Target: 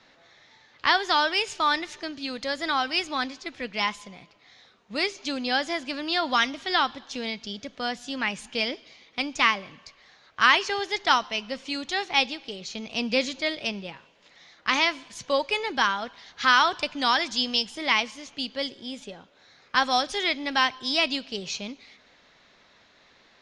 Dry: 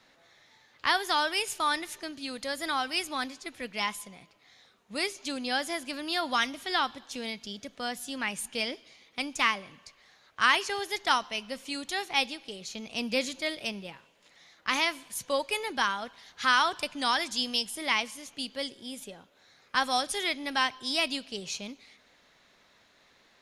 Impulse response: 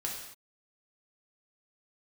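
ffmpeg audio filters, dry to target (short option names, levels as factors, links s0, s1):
-af "lowpass=f=6200:w=0.5412,lowpass=f=6200:w=1.3066,volume=1.68"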